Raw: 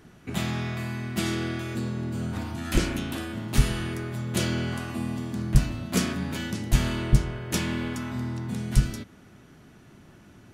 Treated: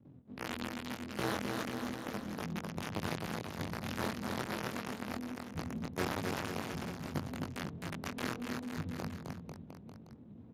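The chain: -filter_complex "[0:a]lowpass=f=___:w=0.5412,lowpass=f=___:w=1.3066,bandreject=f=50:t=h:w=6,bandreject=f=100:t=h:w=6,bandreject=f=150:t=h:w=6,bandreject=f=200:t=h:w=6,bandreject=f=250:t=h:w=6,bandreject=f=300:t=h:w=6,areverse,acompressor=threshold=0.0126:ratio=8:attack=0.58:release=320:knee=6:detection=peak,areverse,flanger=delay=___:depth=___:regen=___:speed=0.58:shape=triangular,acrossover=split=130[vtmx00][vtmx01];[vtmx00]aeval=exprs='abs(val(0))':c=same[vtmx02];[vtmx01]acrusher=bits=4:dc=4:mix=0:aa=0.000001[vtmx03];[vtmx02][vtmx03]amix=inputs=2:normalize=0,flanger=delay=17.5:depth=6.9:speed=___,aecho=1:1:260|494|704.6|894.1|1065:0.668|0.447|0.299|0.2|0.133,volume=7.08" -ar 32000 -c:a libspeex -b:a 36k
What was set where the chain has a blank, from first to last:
1.6k, 1.6k, 6.5, 4.5, 22, 2.4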